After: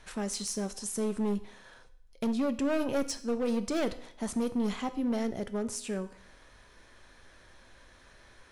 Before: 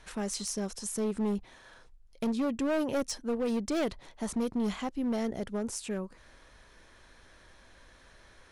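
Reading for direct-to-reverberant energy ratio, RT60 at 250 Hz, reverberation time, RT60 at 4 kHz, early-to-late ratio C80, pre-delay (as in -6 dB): 10.5 dB, 0.70 s, 0.65 s, 0.65 s, 17.5 dB, 4 ms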